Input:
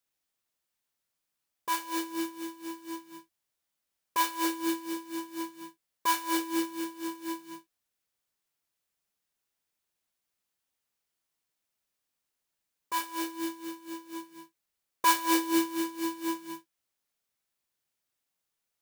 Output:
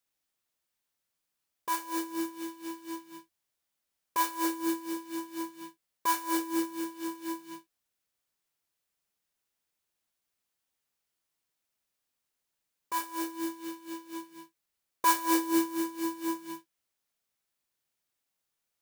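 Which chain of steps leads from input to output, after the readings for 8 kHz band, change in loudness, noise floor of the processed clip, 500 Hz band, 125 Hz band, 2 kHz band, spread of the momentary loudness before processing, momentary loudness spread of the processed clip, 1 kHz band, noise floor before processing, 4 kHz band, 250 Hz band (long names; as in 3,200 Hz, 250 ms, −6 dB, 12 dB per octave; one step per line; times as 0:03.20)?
−1.0 dB, −1.0 dB, −84 dBFS, 0.0 dB, can't be measured, −2.5 dB, 17 LU, 16 LU, −0.5 dB, −85 dBFS, −4.5 dB, 0.0 dB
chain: dynamic equaliser 3,100 Hz, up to −6 dB, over −48 dBFS, Q 0.95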